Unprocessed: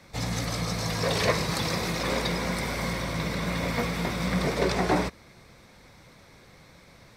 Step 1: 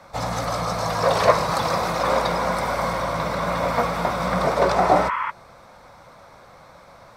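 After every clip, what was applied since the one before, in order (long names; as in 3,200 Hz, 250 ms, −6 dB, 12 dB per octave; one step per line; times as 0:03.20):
healed spectral selection 0:04.82–0:05.28, 880–3,400 Hz before
flat-topped bell 880 Hz +12 dB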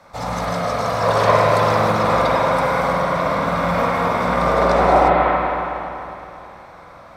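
convolution reverb RT60 3.0 s, pre-delay 46 ms, DRR −5.5 dB
level −2 dB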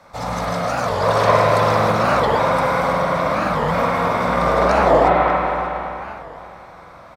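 single-tap delay 586 ms −17 dB
wow of a warped record 45 rpm, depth 250 cents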